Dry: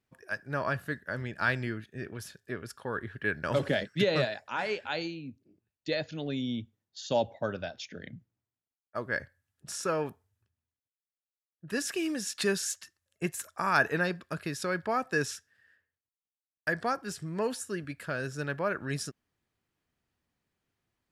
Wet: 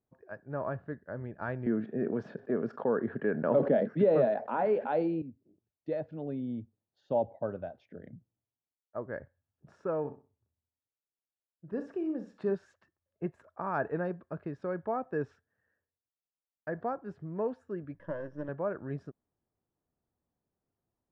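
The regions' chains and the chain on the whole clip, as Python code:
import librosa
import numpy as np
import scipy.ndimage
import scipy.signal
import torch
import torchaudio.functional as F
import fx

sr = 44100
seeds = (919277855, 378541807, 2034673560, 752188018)

y = fx.chain(x, sr, fx.cabinet(low_hz=150.0, low_slope=24, high_hz=6900.0, hz=(230.0, 460.0, 670.0), db=(7, 5, 3)),
    fx.env_flatten(amount_pct=50), at=(1.66, 5.22))
y = fx.chain(y, sr, fx.peak_eq(hz=2300.0, db=-5.0, octaves=1.5),
    fx.doubler(ms=41.0, db=-12),
    fx.room_flutter(wall_m=10.8, rt60_s=0.32), at=(10.0, 12.55))
y = fx.chain(y, sr, fx.halfwave_gain(db=-7.0),
    fx.ripple_eq(per_octave=1.2, db=14),
    fx.quant_float(bits=2), at=(17.94, 18.49))
y = scipy.signal.sosfilt(scipy.signal.cheby1(2, 1.0, 720.0, 'lowpass', fs=sr, output='sos'), y)
y = fx.low_shelf(y, sr, hz=350.0, db=-3.0)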